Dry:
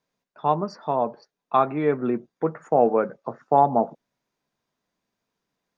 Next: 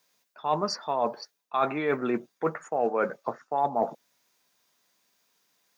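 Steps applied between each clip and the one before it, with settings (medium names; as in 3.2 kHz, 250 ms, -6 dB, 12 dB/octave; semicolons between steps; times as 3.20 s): tilt EQ +3.5 dB/octave; reverse; compression 6:1, threshold -29 dBFS, peak gain reduction 15 dB; reverse; trim +6 dB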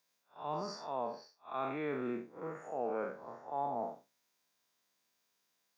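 spectral blur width 141 ms; trim -7.5 dB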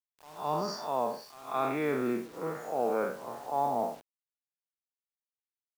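pre-echo 214 ms -21 dB; modulation noise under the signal 30 dB; word length cut 10-bit, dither none; trim +7 dB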